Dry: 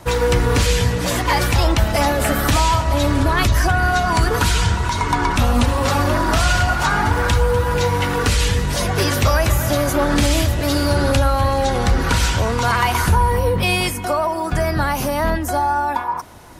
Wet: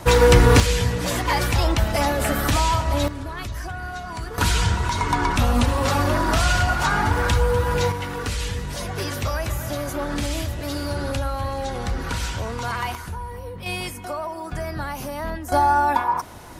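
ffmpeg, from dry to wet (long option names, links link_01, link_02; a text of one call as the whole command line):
ffmpeg -i in.wav -af "asetnsamples=nb_out_samples=441:pad=0,asendcmd='0.6 volume volume -4dB;3.08 volume volume -15dB;4.38 volume volume -3dB;7.92 volume volume -9.5dB;12.95 volume volume -17dB;13.66 volume volume -10dB;15.52 volume volume 1dB',volume=3.5dB" out.wav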